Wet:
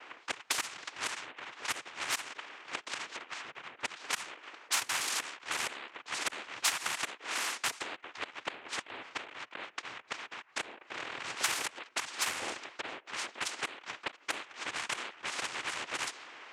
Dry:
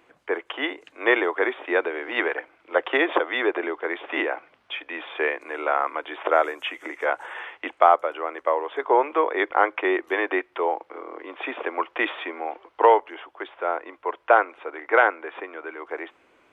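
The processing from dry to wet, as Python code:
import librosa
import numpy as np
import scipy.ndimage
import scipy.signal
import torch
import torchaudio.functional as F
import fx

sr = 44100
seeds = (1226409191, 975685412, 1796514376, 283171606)

y = fx.gate_flip(x, sr, shuts_db=-17.0, range_db=-25)
y = scipy.signal.sosfilt(scipy.signal.butter(2, 1300.0, 'highpass', fs=sr, output='sos'), y)
y = fx.high_shelf(y, sr, hz=2300.0, db=9.5)
y = fx.noise_vocoder(y, sr, seeds[0], bands=4)
y = fx.env_lowpass(y, sr, base_hz=1900.0, full_db=-29.0)
y = fx.spectral_comp(y, sr, ratio=2.0)
y = y * librosa.db_to_amplitude(-2.5)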